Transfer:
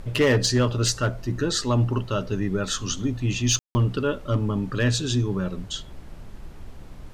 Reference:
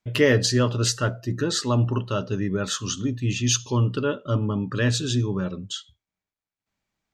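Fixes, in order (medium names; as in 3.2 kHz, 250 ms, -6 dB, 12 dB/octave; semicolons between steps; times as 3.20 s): clip repair -13.5 dBFS; room tone fill 3.59–3.75 s; noise print and reduce 30 dB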